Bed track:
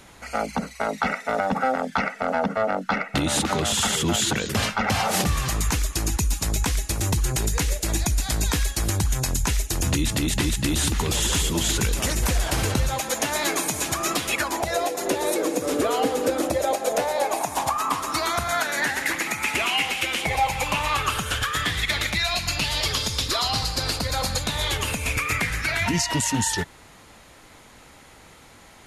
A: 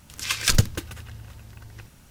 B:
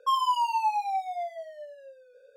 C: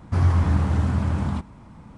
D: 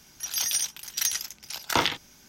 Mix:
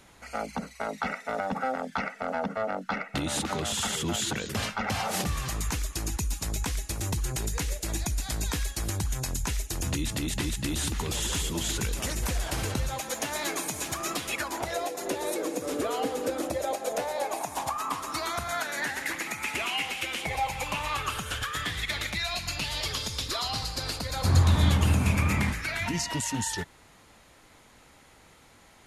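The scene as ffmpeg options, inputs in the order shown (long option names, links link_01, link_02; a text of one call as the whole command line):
ffmpeg -i bed.wav -i cue0.wav -i cue1.wav -i cue2.wav -i cue3.wav -filter_complex "[0:a]volume=-7dB[link_01];[4:a]acrossover=split=2700[link_02][link_03];[link_03]acompressor=threshold=-37dB:ratio=4:attack=1:release=60[link_04];[link_02][link_04]amix=inputs=2:normalize=0,atrim=end=2.28,asetpts=PTS-STARTPTS,volume=-17dB,afade=type=in:duration=0.004:curve=hsin,afade=type=out:start_time=2.276:duration=0.004:curve=hsin,adelay=12850[link_05];[3:a]atrim=end=1.97,asetpts=PTS-STARTPTS,volume=-2dB,afade=type=in:duration=0.004:curve=hsin,afade=type=out:start_time=1.966:duration=0.004:curve=hsin,adelay=24120[link_06];[link_01][link_05][link_06]amix=inputs=3:normalize=0" out.wav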